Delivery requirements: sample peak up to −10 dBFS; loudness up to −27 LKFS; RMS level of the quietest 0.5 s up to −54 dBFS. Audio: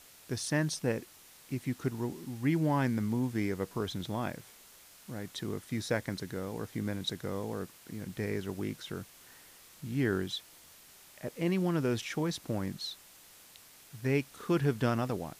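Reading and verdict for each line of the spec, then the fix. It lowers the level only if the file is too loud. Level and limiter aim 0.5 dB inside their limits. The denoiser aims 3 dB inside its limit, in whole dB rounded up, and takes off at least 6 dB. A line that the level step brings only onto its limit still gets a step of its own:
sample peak −17.0 dBFS: in spec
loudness −34.0 LKFS: in spec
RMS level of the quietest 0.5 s −56 dBFS: in spec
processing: no processing needed

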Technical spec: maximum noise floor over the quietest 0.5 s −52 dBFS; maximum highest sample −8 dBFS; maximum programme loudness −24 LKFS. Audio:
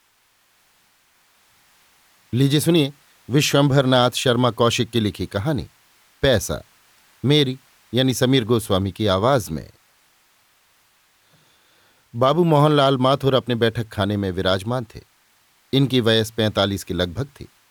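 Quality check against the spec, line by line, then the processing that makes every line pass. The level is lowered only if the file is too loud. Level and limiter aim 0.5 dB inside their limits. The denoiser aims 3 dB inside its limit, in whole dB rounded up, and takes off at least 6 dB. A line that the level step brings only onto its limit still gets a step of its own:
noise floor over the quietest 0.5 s −61 dBFS: in spec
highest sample −5.0 dBFS: out of spec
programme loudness −19.5 LKFS: out of spec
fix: level −5 dB

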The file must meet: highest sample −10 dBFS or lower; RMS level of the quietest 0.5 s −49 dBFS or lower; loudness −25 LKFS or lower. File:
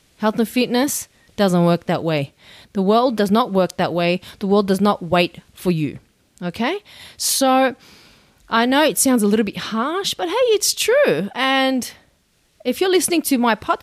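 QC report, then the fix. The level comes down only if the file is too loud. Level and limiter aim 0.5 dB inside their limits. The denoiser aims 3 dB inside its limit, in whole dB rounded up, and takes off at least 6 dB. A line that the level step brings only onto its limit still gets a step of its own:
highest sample −5.0 dBFS: out of spec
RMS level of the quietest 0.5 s −61 dBFS: in spec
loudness −18.5 LKFS: out of spec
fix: level −7 dB

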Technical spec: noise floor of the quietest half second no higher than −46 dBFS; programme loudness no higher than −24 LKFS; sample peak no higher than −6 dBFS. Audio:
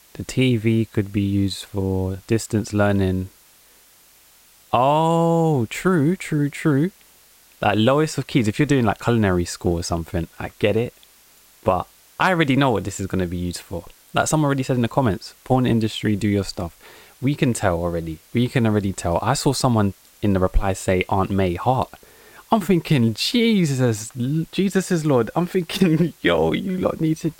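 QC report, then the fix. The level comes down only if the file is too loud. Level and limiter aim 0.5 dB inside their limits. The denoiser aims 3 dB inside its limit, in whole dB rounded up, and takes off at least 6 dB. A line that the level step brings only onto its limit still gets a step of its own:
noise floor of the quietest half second −52 dBFS: in spec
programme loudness −21.0 LKFS: out of spec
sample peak −4.5 dBFS: out of spec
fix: level −3.5 dB

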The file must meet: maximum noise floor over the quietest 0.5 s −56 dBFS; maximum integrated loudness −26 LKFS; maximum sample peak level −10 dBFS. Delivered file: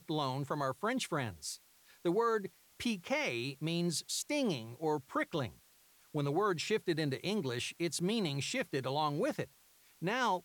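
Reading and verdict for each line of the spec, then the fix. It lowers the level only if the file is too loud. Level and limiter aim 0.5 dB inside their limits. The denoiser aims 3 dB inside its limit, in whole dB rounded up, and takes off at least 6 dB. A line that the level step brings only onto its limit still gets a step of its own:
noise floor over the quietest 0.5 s −65 dBFS: in spec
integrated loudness −35.5 LKFS: in spec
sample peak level −21.5 dBFS: in spec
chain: no processing needed

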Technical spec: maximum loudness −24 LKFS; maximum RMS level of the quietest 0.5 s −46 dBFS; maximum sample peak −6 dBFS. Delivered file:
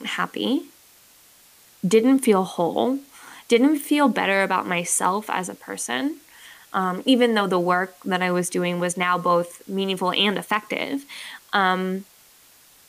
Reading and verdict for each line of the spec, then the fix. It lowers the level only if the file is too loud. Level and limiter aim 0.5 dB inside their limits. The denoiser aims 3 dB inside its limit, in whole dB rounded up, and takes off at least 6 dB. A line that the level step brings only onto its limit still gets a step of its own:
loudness −22.0 LKFS: out of spec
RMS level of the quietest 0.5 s −53 dBFS: in spec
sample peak −6.5 dBFS: in spec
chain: level −2.5 dB

